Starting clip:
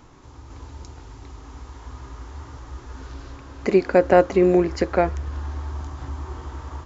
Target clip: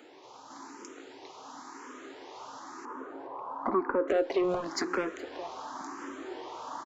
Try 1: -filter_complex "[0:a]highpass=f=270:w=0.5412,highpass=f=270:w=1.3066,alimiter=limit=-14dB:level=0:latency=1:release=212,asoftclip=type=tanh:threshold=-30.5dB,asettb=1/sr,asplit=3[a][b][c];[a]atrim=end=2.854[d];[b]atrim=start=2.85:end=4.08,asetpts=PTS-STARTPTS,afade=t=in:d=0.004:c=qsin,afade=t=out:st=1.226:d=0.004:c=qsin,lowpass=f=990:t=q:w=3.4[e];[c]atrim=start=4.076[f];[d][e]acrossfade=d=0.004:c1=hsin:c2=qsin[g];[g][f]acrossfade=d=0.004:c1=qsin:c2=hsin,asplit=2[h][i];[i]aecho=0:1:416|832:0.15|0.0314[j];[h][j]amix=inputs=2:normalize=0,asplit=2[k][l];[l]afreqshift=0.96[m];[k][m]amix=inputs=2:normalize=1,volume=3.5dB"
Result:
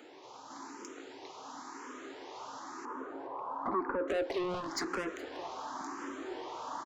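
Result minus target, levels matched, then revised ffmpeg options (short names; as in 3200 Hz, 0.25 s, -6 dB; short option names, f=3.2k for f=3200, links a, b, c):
soft clip: distortion +8 dB
-filter_complex "[0:a]highpass=f=270:w=0.5412,highpass=f=270:w=1.3066,alimiter=limit=-14dB:level=0:latency=1:release=212,asoftclip=type=tanh:threshold=-21.5dB,asettb=1/sr,asplit=3[a][b][c];[a]atrim=end=2.854[d];[b]atrim=start=2.85:end=4.08,asetpts=PTS-STARTPTS,afade=t=in:d=0.004:c=qsin,afade=t=out:st=1.226:d=0.004:c=qsin,lowpass=f=990:t=q:w=3.4[e];[c]atrim=start=4.076[f];[d][e]acrossfade=d=0.004:c1=hsin:c2=qsin[g];[g][f]acrossfade=d=0.004:c1=qsin:c2=hsin,asplit=2[h][i];[i]aecho=0:1:416|832:0.15|0.0314[j];[h][j]amix=inputs=2:normalize=0,asplit=2[k][l];[l]afreqshift=0.96[m];[k][m]amix=inputs=2:normalize=1,volume=3.5dB"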